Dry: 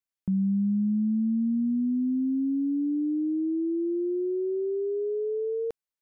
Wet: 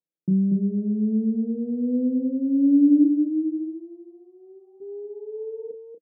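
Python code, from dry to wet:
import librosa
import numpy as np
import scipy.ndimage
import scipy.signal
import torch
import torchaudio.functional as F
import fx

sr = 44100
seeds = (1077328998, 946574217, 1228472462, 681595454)

y = fx.self_delay(x, sr, depth_ms=0.23)
y = fx.rider(y, sr, range_db=3, speed_s=2.0)
y = fx.filter_sweep_highpass(y, sr, from_hz=160.0, to_hz=480.0, start_s=4.05, end_s=4.71, q=7.4)
y = fx.curve_eq(y, sr, hz=(120.0, 520.0, 850.0), db=(0, -27, 0), at=(3.03, 4.8), fade=0.02)
y = fx.filter_sweep_lowpass(y, sr, from_hz=540.0, to_hz=190.0, start_s=1.73, end_s=4.77, q=4.7)
y = fx.peak_eq(y, sr, hz=310.0, db=12.0, octaves=0.32)
y = fx.doubler(y, sr, ms=32.0, db=-8)
y = y + 10.0 ** (-5.5 / 20.0) * np.pad(y, (int(237 * sr / 1000.0), 0))[:len(y)]
y = y * librosa.db_to_amplitude(-8.5)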